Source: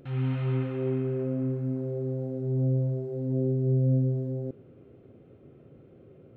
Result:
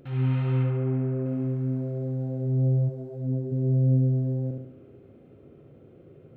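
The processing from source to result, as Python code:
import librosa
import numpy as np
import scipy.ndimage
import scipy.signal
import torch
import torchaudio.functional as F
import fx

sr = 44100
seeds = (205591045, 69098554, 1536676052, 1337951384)

p1 = fx.lowpass(x, sr, hz=1700.0, slope=12, at=(0.63, 1.26))
p2 = p1 + fx.echo_feedback(p1, sr, ms=70, feedback_pct=50, wet_db=-4.0, dry=0)
y = fx.detune_double(p2, sr, cents=23, at=(2.88, 3.51), fade=0.02)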